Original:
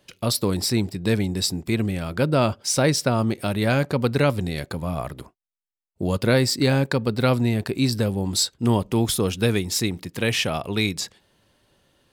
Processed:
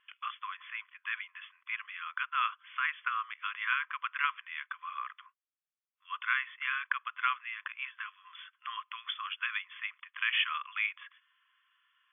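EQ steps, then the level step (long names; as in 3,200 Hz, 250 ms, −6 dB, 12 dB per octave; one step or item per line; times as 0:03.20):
linear-phase brick-wall band-pass 1,000–3,500 Hz
high-frequency loss of the air 230 metres
0.0 dB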